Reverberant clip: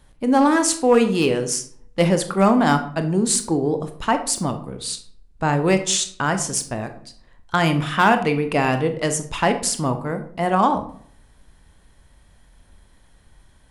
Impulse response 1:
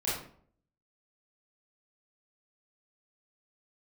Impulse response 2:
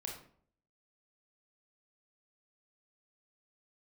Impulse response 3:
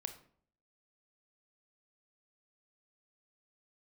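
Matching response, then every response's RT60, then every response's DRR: 3; 0.55, 0.55, 0.55 s; -9.5, -0.5, 7.5 dB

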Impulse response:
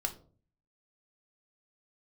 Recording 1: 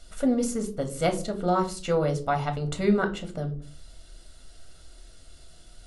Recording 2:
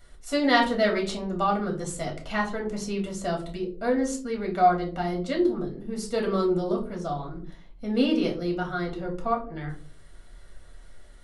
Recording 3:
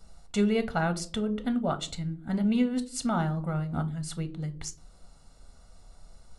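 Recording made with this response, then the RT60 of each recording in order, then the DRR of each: 1; 0.45, 0.45, 0.45 s; 4.5, -1.0, 8.5 dB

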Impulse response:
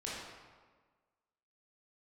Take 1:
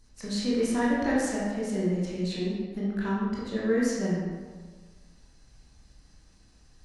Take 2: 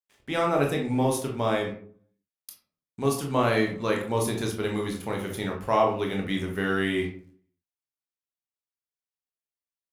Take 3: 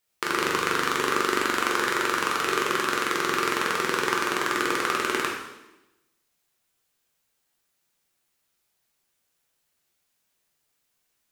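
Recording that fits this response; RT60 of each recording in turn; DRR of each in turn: 1; 1.5, 0.50, 0.95 s; -7.5, 0.5, -2.5 dB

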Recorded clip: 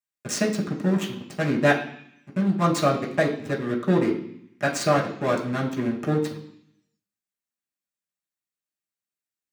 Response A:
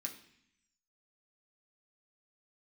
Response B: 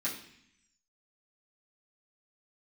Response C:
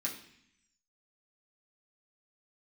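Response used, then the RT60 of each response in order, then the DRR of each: C; 0.65, 0.65, 0.65 s; 0.0, -9.0, -4.5 dB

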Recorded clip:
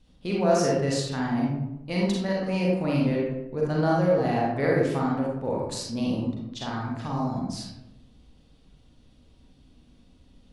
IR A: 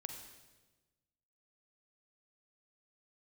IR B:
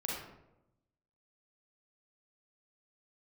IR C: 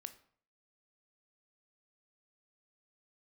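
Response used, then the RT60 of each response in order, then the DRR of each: B; 1.2, 0.90, 0.55 s; 4.5, -4.0, 9.5 dB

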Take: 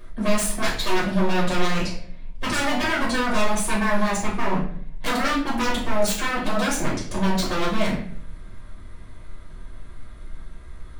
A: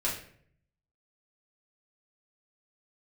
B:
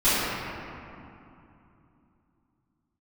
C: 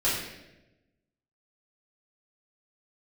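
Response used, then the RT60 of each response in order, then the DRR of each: A; 0.60, 2.8, 1.0 s; -6.0, -19.0, -10.5 dB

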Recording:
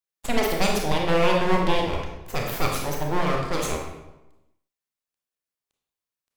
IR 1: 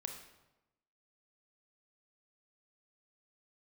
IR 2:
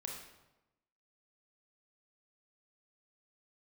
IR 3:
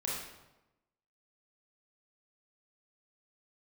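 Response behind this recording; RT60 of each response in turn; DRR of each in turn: 2; 1.0, 1.0, 1.0 s; 4.0, -0.5, -5.0 dB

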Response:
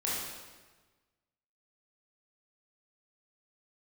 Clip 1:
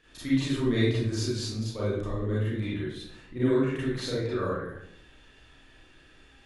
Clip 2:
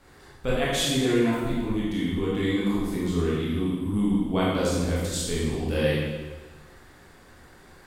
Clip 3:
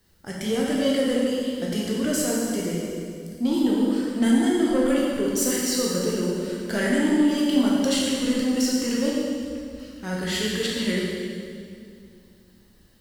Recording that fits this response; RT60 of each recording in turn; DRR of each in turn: 2; 0.70, 1.3, 2.4 s; -9.5, -7.0, -5.0 dB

